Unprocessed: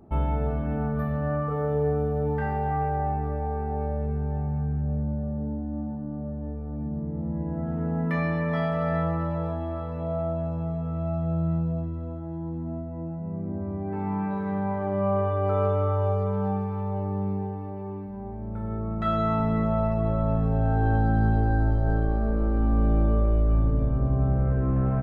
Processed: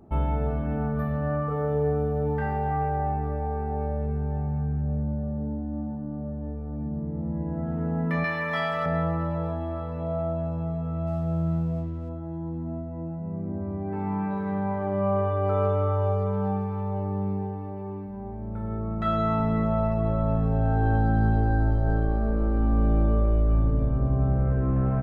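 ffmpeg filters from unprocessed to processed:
-filter_complex "[0:a]asettb=1/sr,asplit=3[s0][s1][s2];[s0]atrim=end=8.244[s3];[s1]atrim=start=8.24:end=8.86,asetpts=PTS-STARTPTS,afade=t=in:d=0.004:c=qsin,afade=t=out:st=0.616:d=0.004:c=qsin,tiltshelf=f=740:g=-9.5[s4];[s2]atrim=start=8.856[s5];[s3][s4]acrossfade=d=0.004:c1=hsin:c2=qsin[s6];[s6][s5]acrossfade=d=0.004:c1=qsin:c2=hsin,asettb=1/sr,asplit=3[s7][s8][s9];[s7]atrim=end=11.074[s10];[s8]atrim=start=11.07:end=12.09,asetpts=PTS-STARTPTS,afade=t=in:d=0.004:c=qsin,afade=t=out:st=1.016:d=0.004:c=qsin,aeval=exprs='sgn(val(0))*max(abs(val(0))-0.00178,0)':c=same[s11];[s9]atrim=start=12.086[s12];[s10][s11]acrossfade=d=0.004:c1=hsin:c2=qsin[s13];[s13][s12]acrossfade=d=0.004:c1=qsin:c2=hsin"

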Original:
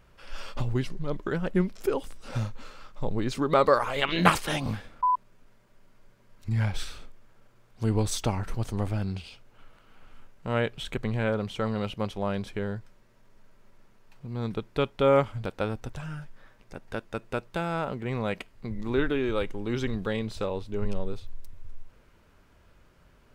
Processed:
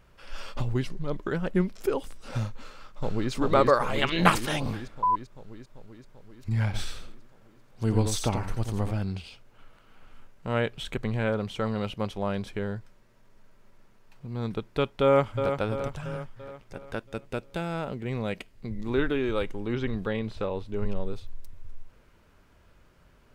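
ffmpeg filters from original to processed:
-filter_complex "[0:a]asplit=2[s0][s1];[s1]afade=t=in:st=2.63:d=0.01,afade=t=out:st=3.31:d=0.01,aecho=0:1:390|780|1170|1560|1950|2340|2730|3120|3510|3900|4290|4680:0.891251|0.623876|0.436713|0.305699|0.213989|0.149793|0.104855|0.0733983|0.0513788|0.0359652|0.0251756|0.0176229[s2];[s0][s2]amix=inputs=2:normalize=0,asplit=3[s3][s4][s5];[s3]afade=t=out:st=6.73:d=0.02[s6];[s4]aecho=1:1:87:0.473,afade=t=in:st=6.73:d=0.02,afade=t=out:st=8.9:d=0.02[s7];[s5]afade=t=in:st=8.9:d=0.02[s8];[s6][s7][s8]amix=inputs=3:normalize=0,asplit=2[s9][s10];[s10]afade=t=in:st=15.03:d=0.01,afade=t=out:st=15.54:d=0.01,aecho=0:1:340|680|1020|1360|1700|2040|2380:0.421697|0.231933|0.127563|0.0701598|0.0385879|0.0212233|0.0116728[s11];[s9][s11]amix=inputs=2:normalize=0,asettb=1/sr,asplit=3[s12][s13][s14];[s12]atrim=end=17.034[s15];[s13]atrim=start=17.03:end=18.88,asetpts=PTS-STARTPTS,afade=t=in:d=0.004:c=qsin,afade=t=out:st=1.846:d=0.004:c=qsin,equalizer=f=1100:w=0.98:g=-5.5[s16];[s14]atrim=start=18.876[s17];[s15][s16]acrossfade=d=0.004:c1=hsin:c2=qsin[s18];[s18][s17]acrossfade=d=0.004:c1=qsin:c2=hsin,asettb=1/sr,asplit=3[s19][s20][s21];[s19]atrim=end=19.544[s22];[s20]atrim=start=19.54:end=21.13,asetpts=PTS-STARTPTS,afade=t=in:d=0.004:c=qsin,afade=t=out:st=1.586:d=0.004:c=qsin,acrossover=split=3700[s23][s24];[s24]acompressor=threshold=0.001:ratio=4:attack=1:release=60[s25];[s23][s25]amix=inputs=2:normalize=0[s26];[s21]atrim=start=21.126[s27];[s22][s26]acrossfade=d=0.004:c1=hsin:c2=qsin[s28];[s28][s27]acrossfade=d=0.004:c1=qsin:c2=hsin"

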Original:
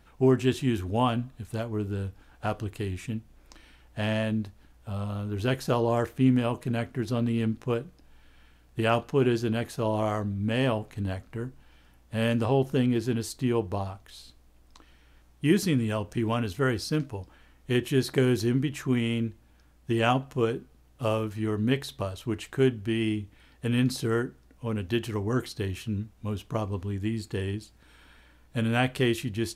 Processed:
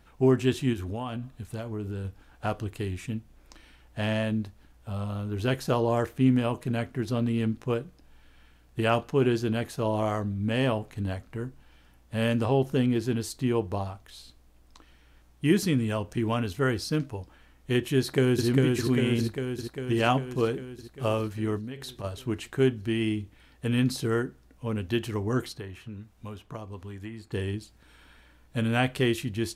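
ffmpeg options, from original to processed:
-filter_complex "[0:a]asettb=1/sr,asplit=3[s0][s1][s2];[s0]atrim=end=0.734[s3];[s1]atrim=start=0.73:end=2.05,asetpts=PTS-STARTPTS,afade=t=in:d=0.004:c=qsin,afade=t=out:st=1.316:d=0.004:c=qsin,acompressor=threshold=0.0316:ratio=5:attack=3.2:release=140:knee=1:detection=peak[s4];[s2]atrim=start=2.046[s5];[s3][s4]acrossfade=d=0.004:c1=hsin:c2=qsin[s6];[s6][s5]acrossfade=d=0.004:c1=qsin:c2=hsin,asplit=2[s7][s8];[s8]afade=t=in:st=17.98:d=0.01,afade=t=out:st=18.47:d=0.01,aecho=0:1:400|800|1200|1600|2000|2400|2800|3200|3600|4000|4400|4800:0.749894|0.524926|0.367448|0.257214|0.18005|0.126035|0.0882243|0.061757|0.0432299|0.0302609|0.0211827|0.0148279[s9];[s7][s9]amix=inputs=2:normalize=0,asplit=3[s10][s11][s12];[s10]afade=t=out:st=21.57:d=0.02[s13];[s11]acompressor=threshold=0.02:ratio=8:attack=3.2:release=140:knee=1:detection=peak,afade=t=in:st=21.57:d=0.02,afade=t=out:st=22.03:d=0.02[s14];[s12]afade=t=in:st=22.03:d=0.02[s15];[s13][s14][s15]amix=inputs=3:normalize=0,asettb=1/sr,asplit=3[s16][s17][s18];[s16]atrim=end=25.534[s19];[s17]atrim=start=25.53:end=27.32,asetpts=PTS-STARTPTS,afade=t=in:d=0.004:c=qsin,afade=t=out:st=1.786:d=0.004:c=qsin,acrossover=split=570|2100[s20][s21][s22];[s20]acompressor=threshold=0.01:ratio=4[s23];[s21]acompressor=threshold=0.00708:ratio=4[s24];[s22]acompressor=threshold=0.00126:ratio=4[s25];[s23][s24][s25]amix=inputs=3:normalize=0[s26];[s18]atrim=start=27.316[s27];[s19][s26]acrossfade=d=0.004:c1=hsin:c2=qsin[s28];[s28][s27]acrossfade=d=0.004:c1=qsin:c2=hsin"

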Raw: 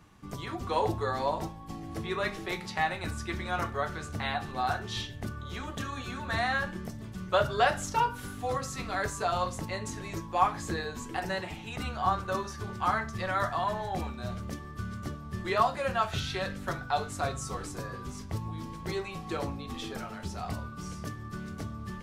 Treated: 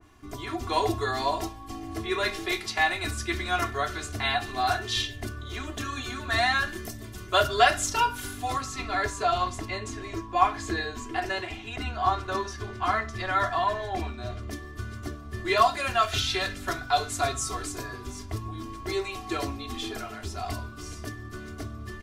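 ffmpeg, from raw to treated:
-filter_complex "[0:a]asettb=1/sr,asplit=3[s0][s1][s2];[s0]atrim=end=6.684[s3];[s1]atrim=start=6.68:end=7.46,asetpts=PTS-STARTPTS,afade=t=in:d=0.004:c=qsin,afade=t=out:st=0.776:d=0.004:c=qsin,highshelf=f=8800:g=8.5[s4];[s2]atrim=start=7.456[s5];[s3][s4]acrossfade=d=0.004:c1=hsin:c2=qsin[s6];[s6][s5]acrossfade=d=0.004:c1=qsin:c2=hsin,asettb=1/sr,asplit=3[s7][s8][s9];[s7]atrim=end=8.624[s10];[s8]atrim=start=8.62:end=14.51,asetpts=PTS-STARTPTS,afade=t=in:d=0.004:c=qsin,afade=t=out:st=5.886:d=0.004:c=qsin,aemphasis=mode=reproduction:type=50kf[s11];[s9]atrim=start=14.506[s12];[s10][s11]acrossfade=d=0.004:c1=hsin:c2=qsin[s13];[s13][s12]acrossfade=d=0.004:c1=qsin:c2=hsin,aecho=1:1:2.9:0.93,adynamicequalizer=threshold=0.01:dfrequency=1800:dqfactor=0.7:tfrequency=1800:tqfactor=0.7:attack=5:release=100:ratio=0.375:range=3.5:mode=boostabove:tftype=highshelf"

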